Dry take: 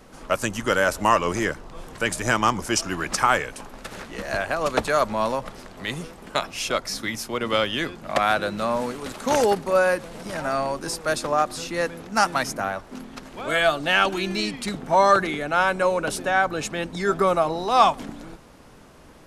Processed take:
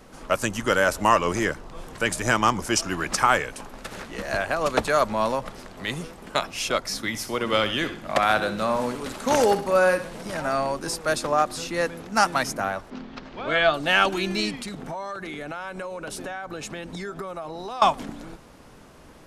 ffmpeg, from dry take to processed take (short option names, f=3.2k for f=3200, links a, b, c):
-filter_complex "[0:a]asettb=1/sr,asplit=3[a][b][c];[a]atrim=end=7.094[d];[b]atrim=start=7.09:end=10.26,asetpts=PTS-STARTPTS,afade=t=in:d=0.004:c=qsin,afade=t=out:st=3.166:d=0.004:c=qsin,aecho=1:1:65|130|195|260:0.266|0.104|0.0405|0.0158,atrim=end_sample=139797[e];[c]atrim=start=10.256[f];[d][e]acrossfade=d=0.004:c1=hsin:c2=qsin[g];[g][f]acrossfade=d=0.004:c1=qsin:c2=hsin,asettb=1/sr,asplit=3[h][i][j];[h]atrim=end=12.904[k];[i]atrim=start=12.9:end=13.74,asetpts=PTS-STARTPTS,afade=t=in:d=0.004:c=qsin,afade=t=out:st=0.836:d=0.004:c=qsin,lowpass=f=5k:w=0.5412,lowpass=f=5k:w=1.3066[l];[j]atrim=start=13.736[m];[k][l]acrossfade=d=0.004:c1=hsin:c2=qsin[n];[n][m]acrossfade=d=0.004:c1=qsin:c2=hsin,asettb=1/sr,asplit=3[o][p][q];[o]atrim=end=14.574[r];[p]atrim=start=14.57:end=17.82,asetpts=PTS-STARTPTS,afade=t=in:d=0.004:c=qsin,afade=t=out:st=3.246:d=0.004:c=qsin,acompressor=threshold=-30dB:ratio=8:attack=3.2:release=140:knee=1:detection=peak[s];[q]atrim=start=17.816[t];[r][s]acrossfade=d=0.004:c1=hsin:c2=qsin[u];[u][t]acrossfade=d=0.004:c1=qsin:c2=hsin"